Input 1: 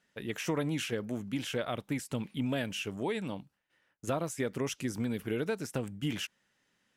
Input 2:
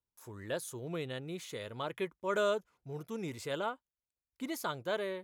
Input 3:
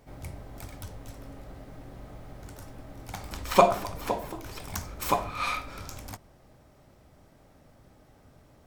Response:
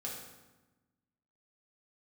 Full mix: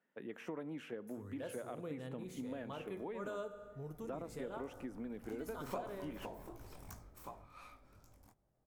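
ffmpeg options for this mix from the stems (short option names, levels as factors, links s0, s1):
-filter_complex "[0:a]acrossover=split=190 3000:gain=0.0891 1 0.141[s0][s1][s2];[s0][s1][s2]amix=inputs=3:normalize=0,acontrast=54,volume=0.316,asplit=3[s3][s4][s5];[s4]volume=0.126[s6];[1:a]adelay=900,volume=0.596,asplit=2[s7][s8];[s8]volume=0.531[s9];[2:a]flanger=delay=17:depth=7.6:speed=2.7,adelay=2150,volume=0.355,afade=t=in:st=3.85:d=0.32:silence=0.281838,afade=t=out:st=6.76:d=0.48:silence=0.316228[s10];[s5]apad=whole_len=270475[s11];[s7][s11]sidechaincompress=threshold=0.00794:ratio=8:attack=16:release=103[s12];[3:a]atrim=start_sample=2205[s13];[s6][s9]amix=inputs=2:normalize=0[s14];[s14][s13]afir=irnorm=-1:irlink=0[s15];[s3][s12][s10][s15]amix=inputs=4:normalize=0,equalizer=f=3400:w=0.53:g=-8.5,acompressor=threshold=0.00708:ratio=2.5"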